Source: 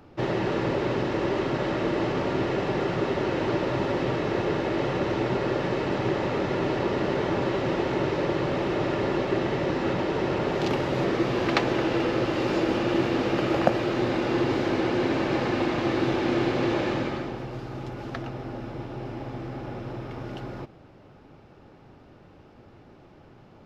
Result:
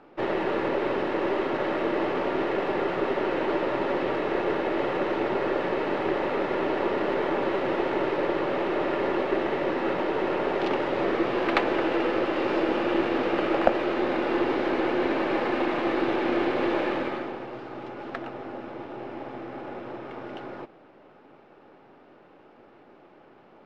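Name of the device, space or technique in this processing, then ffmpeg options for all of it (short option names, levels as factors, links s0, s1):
crystal radio: -af "highpass=310,lowpass=2900,aeval=exprs='if(lt(val(0),0),0.708*val(0),val(0))':c=same,volume=1.41"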